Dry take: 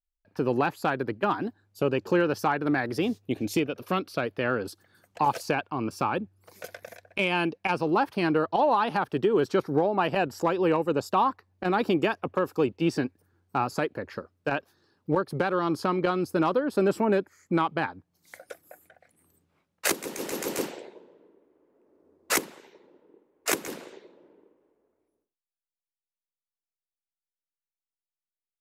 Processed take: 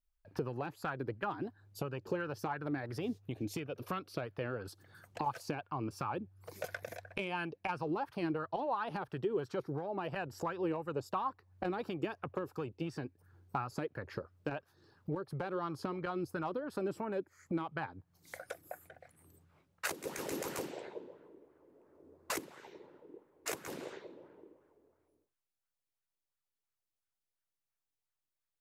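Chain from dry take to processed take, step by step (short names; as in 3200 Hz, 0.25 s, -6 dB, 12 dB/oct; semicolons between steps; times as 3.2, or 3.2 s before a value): resonant low shelf 170 Hz +7 dB, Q 1.5; compressor 4:1, threshold -39 dBFS, peak gain reduction 17 dB; LFO bell 2.9 Hz 280–1600 Hz +9 dB; gain -1 dB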